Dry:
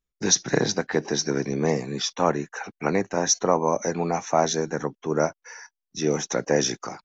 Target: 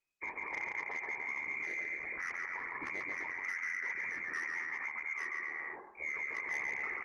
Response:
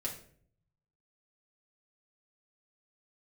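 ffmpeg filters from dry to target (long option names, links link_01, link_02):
-af "afreqshift=260,aecho=1:1:1.2:0.5,lowpass=frequency=2400:width_type=q:width=0.5098,lowpass=frequency=2400:width_type=q:width=0.6013,lowpass=frequency=2400:width_type=q:width=0.9,lowpass=frequency=2400:width_type=q:width=2.563,afreqshift=-2800,equalizer=frequency=380:width_type=o:width=0.84:gain=11,aecho=1:1:140|252|341.6|413.3|470.6:0.631|0.398|0.251|0.158|0.1,asoftclip=type=tanh:threshold=-13.5dB,bandreject=frequency=367.6:width_type=h:width=4,bandreject=frequency=735.2:width_type=h:width=4,bandreject=frequency=1102.8:width_type=h:width=4,bandreject=frequency=1470.4:width_type=h:width=4,bandreject=frequency=1838:width_type=h:width=4,alimiter=limit=-23.5dB:level=0:latency=1:release=54,areverse,acompressor=mode=upward:threshold=-32dB:ratio=2.5,areverse,volume=-7.5dB" -ar 48000 -c:a libopus -b:a 16k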